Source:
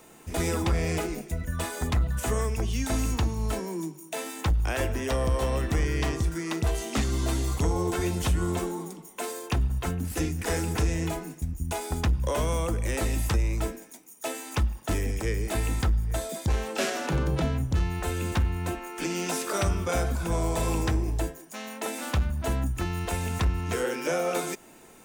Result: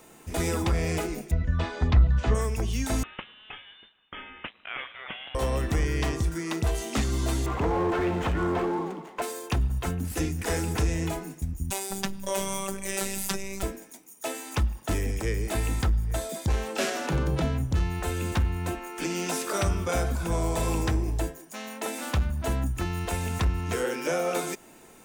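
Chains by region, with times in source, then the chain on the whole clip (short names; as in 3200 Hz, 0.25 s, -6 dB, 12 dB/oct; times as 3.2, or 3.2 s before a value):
1.31–2.35 LPF 4700 Hz 24 dB/oct + low shelf 140 Hz +8 dB
3.03–5.35 HPF 1400 Hz + inverted band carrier 3900 Hz
7.46–9.22 median filter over 9 samples + overdrive pedal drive 20 dB, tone 1400 Hz, clips at -18 dBFS
11.7–13.63 HPF 88 Hz + high shelf 3200 Hz +8.5 dB + robotiser 194 Hz
whole clip: dry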